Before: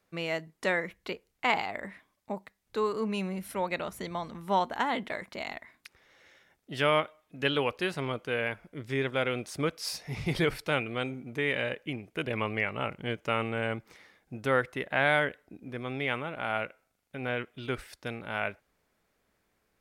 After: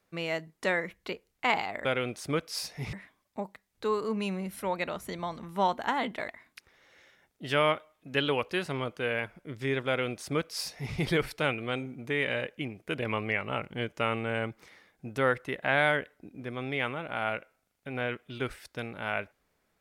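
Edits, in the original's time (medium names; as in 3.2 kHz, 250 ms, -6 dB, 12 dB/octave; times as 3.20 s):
5.20–5.56 s: delete
9.15–10.23 s: copy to 1.85 s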